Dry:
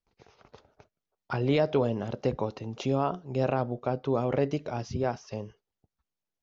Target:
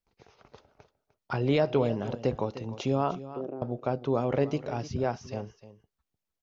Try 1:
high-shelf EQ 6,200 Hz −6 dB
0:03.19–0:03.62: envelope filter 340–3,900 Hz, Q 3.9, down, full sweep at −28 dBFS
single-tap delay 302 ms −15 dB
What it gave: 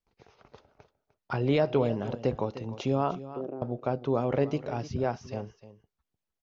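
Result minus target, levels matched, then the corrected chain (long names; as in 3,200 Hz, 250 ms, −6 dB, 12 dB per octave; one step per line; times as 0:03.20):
8,000 Hz band −3.0 dB
0:03.19–0:03.62: envelope filter 340–3,900 Hz, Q 3.9, down, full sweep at −28 dBFS
single-tap delay 302 ms −15 dB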